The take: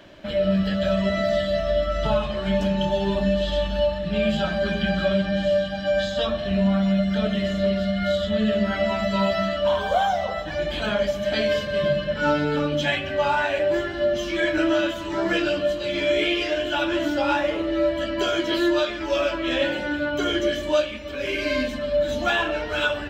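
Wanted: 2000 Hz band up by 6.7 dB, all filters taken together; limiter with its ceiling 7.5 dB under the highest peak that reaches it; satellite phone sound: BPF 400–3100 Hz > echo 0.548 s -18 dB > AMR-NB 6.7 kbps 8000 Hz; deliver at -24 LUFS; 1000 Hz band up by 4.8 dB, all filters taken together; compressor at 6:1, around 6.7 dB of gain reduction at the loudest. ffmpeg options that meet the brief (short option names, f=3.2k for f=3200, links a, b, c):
-af "equalizer=f=1k:t=o:g=4.5,equalizer=f=2k:t=o:g=8,acompressor=threshold=-20dB:ratio=6,alimiter=limit=-17.5dB:level=0:latency=1,highpass=400,lowpass=3.1k,aecho=1:1:548:0.126,volume=5dB" -ar 8000 -c:a libopencore_amrnb -b:a 6700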